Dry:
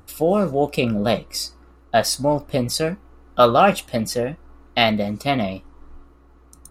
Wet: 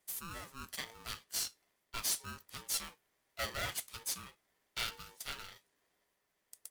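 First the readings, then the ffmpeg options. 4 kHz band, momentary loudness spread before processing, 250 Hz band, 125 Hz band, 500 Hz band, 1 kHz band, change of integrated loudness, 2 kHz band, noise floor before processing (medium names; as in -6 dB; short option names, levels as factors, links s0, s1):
-14.5 dB, 12 LU, -34.0 dB, -26.5 dB, -33.5 dB, -26.5 dB, -19.0 dB, -16.0 dB, -51 dBFS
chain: -af "aderivative,asoftclip=type=tanh:threshold=0.075,aeval=exprs='val(0)*sgn(sin(2*PI*680*n/s))':c=same,volume=0.501"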